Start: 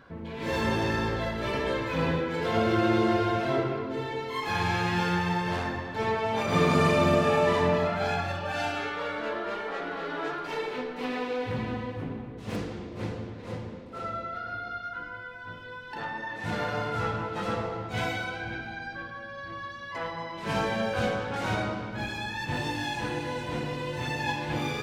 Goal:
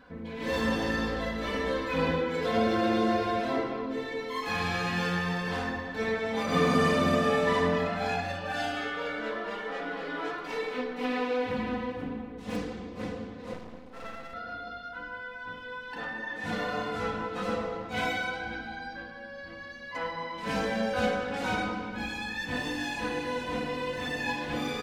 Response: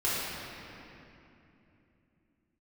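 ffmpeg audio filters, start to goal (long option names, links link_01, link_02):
-filter_complex "[0:a]aecho=1:1:4:0.81,asettb=1/sr,asplit=3[link_01][link_02][link_03];[link_01]atrim=end=13.534[link_04];[link_02]atrim=start=13.53:end=14.34,asetpts=PTS-STARTPTS,afade=type=in:duration=0.004:curve=qsin,afade=type=out:start_time=0.806:duration=0.004:curve=qsin,aeval=exprs='max(val(0),0)':channel_layout=same[link_05];[link_03]atrim=start=14.336[link_06];[link_04][link_05]acrossfade=duration=0.004:curve1=hsin:curve2=qsin[link_07];[link_07][link_06]acrossfade=duration=0.004:curve1=qsin:curve2=hsin,volume=-3dB"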